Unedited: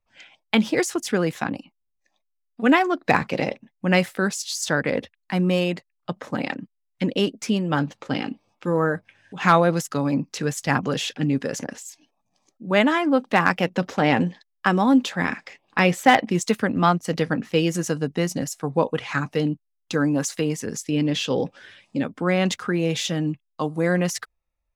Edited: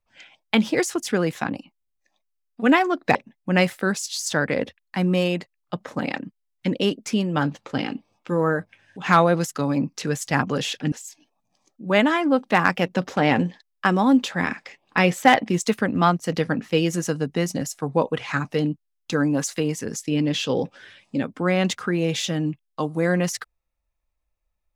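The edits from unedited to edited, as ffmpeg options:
-filter_complex "[0:a]asplit=3[a][b][c];[a]atrim=end=3.152[d];[b]atrim=start=3.508:end=11.282[e];[c]atrim=start=11.728[f];[d][e]acrossfade=d=0.004:c1=hsin:c2=hsin[g];[g][f]acrossfade=d=0.004:c1=hsin:c2=hsin"

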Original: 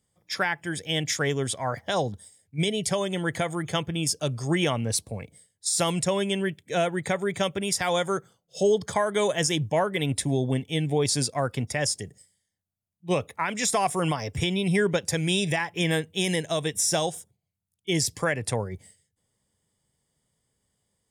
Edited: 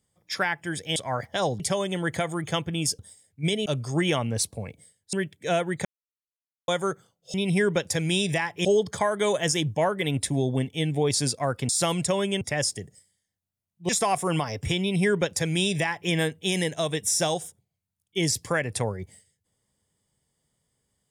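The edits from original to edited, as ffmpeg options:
-filter_complex "[0:a]asplit=13[a][b][c][d][e][f][g][h][i][j][k][l][m];[a]atrim=end=0.962[n];[b]atrim=start=1.498:end=2.142[o];[c]atrim=start=2.808:end=4.202[p];[d]atrim=start=2.138:end=2.812[q];[e]atrim=start=4.198:end=5.672[r];[f]atrim=start=6.388:end=7.11,asetpts=PTS-STARTPTS,afade=t=out:st=0.718:d=0.004:c=hsin[s];[g]atrim=start=7.11:end=7.94,asetpts=PTS-STARTPTS,volume=0[t];[h]atrim=start=7.94:end=8.602,asetpts=PTS-STARTPTS,afade=t=in:d=0.004:c=hsin[u];[i]atrim=start=14.518:end=15.832[v];[j]atrim=start=8.598:end=11.642[w];[k]atrim=start=5.668:end=6.392[x];[l]atrim=start=11.638:end=13.122[y];[m]atrim=start=13.608[z];[n][o]acrossfade=d=0.004:c1=hsin:c2=hsin[aa];[aa][p]acrossfade=d=0.004:c1=hsin:c2=hsin[ab];[ab][q]acrossfade=d=0.004:c1=hsin:c2=hsin[ac];[ac][r]acrossfade=d=0.004:c1=hsin:c2=hsin[ad];[s][t][u]concat=n=3:v=0:a=1[ae];[ad][ae]acrossfade=d=0.004:c1=hsin:c2=hsin[af];[af][v]acrossfade=d=0.004:c1=hsin:c2=hsin[ag];[ag][w]acrossfade=d=0.004:c1=hsin:c2=hsin[ah];[ah][x]acrossfade=d=0.004:c1=hsin:c2=hsin[ai];[ai][y]acrossfade=d=0.004:c1=hsin:c2=hsin[aj];[aj][z]acrossfade=d=0.004:c1=hsin:c2=hsin"

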